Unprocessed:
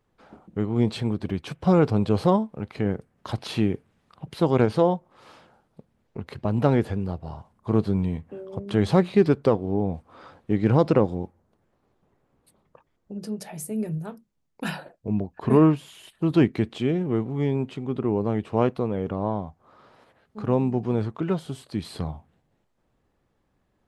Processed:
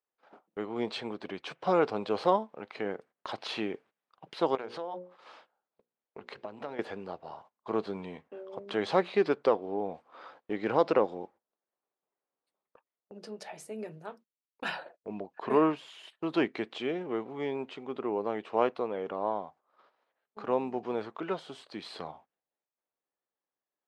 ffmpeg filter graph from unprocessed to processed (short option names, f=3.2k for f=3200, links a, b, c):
-filter_complex "[0:a]asettb=1/sr,asplit=3[a][b][c];[a]atrim=end=4.554[d];[b]atrim=start=4.55:end=6.79,asetpts=PTS-STARTPTS,afade=t=in:d=0.004:c=qsin,afade=t=out:st=2.236:d=0.004:c=qsin,bandreject=f=60:t=h:w=6,bandreject=f=120:t=h:w=6,bandreject=f=180:t=h:w=6,bandreject=f=240:t=h:w=6,bandreject=f=300:t=h:w=6,bandreject=f=360:t=h:w=6,bandreject=f=420:t=h:w=6,bandreject=f=480:t=h:w=6,bandreject=f=540:t=h:w=6,acompressor=threshold=-28dB:ratio=10:attack=3.2:release=140:knee=1:detection=peak[e];[c]atrim=start=6.786[f];[d][e]acrossfade=d=0.004:c1=hsin:c2=qsin[g];[g][f]acrossfade=d=0.004:c1=qsin:c2=hsin,highpass=490,agate=range=-18dB:threshold=-53dB:ratio=16:detection=peak,lowpass=4.8k,volume=-1dB"